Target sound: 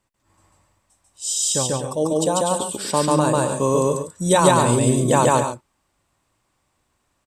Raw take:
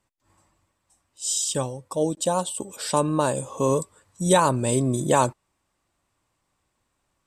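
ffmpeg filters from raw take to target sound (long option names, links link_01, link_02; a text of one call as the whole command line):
ffmpeg -i in.wav -af "aecho=1:1:142.9|244.9|279.9:1|0.355|0.282,volume=1.5dB" out.wav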